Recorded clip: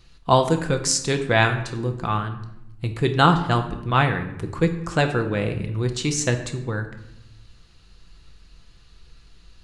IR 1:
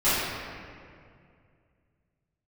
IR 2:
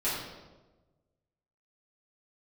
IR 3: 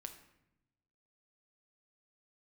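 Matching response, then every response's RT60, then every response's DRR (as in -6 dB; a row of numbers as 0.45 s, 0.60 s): 3; 2.3 s, 1.2 s, 0.85 s; -16.5 dB, -12.0 dB, 5.5 dB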